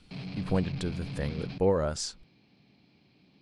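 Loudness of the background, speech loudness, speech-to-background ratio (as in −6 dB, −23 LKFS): −39.0 LKFS, −31.5 LKFS, 7.5 dB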